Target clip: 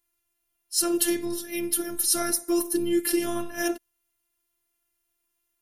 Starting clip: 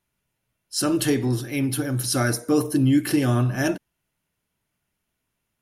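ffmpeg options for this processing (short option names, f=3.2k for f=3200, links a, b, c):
-af "aemphasis=mode=production:type=50kf,afftfilt=real='hypot(re,im)*cos(PI*b)':imag='0':win_size=512:overlap=0.75,volume=-2.5dB"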